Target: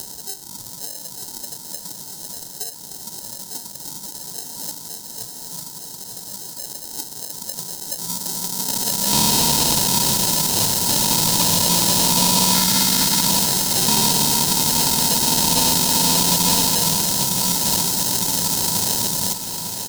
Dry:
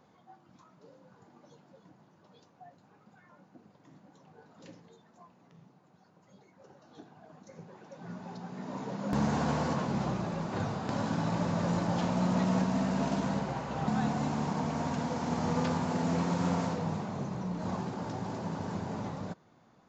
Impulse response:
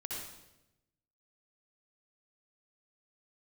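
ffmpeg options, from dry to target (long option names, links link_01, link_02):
-filter_complex "[0:a]acrusher=samples=38:mix=1:aa=0.000001,aexciter=amount=14.5:drive=7.5:freq=3900,acontrast=89,asettb=1/sr,asplit=3[link_01][link_02][link_03];[link_01]atrim=end=12.544[link_04];[link_02]atrim=start=12.54:end=13.26,asetpts=PTS-STARTPTS,afade=type=in:duration=0.004:curve=qsin,afade=type=out:start_time=0.716:duration=0.004:curve=qsin,asuperstop=centerf=660:order=8:qfactor=0.82[link_05];[link_03]atrim=start=13.256[link_06];[link_04][link_05]acrossfade=duration=0.004:curve1=hsin:curve2=qsin[link_07];[link_07][link_06]acrossfade=duration=0.004:curve1=qsin:curve2=hsin,aeval=exprs='0.562*(abs(mod(val(0)/0.562+3,4)-2)-1)':channel_layout=same,equalizer=frequency=930:width_type=o:width=0.29:gain=11.5,aecho=1:1:901|1802|2703|3604|4505|5406|6307:0.316|0.18|0.103|0.0586|0.0334|0.019|0.0108,acompressor=mode=upward:threshold=-19dB:ratio=2.5,volume=-2dB"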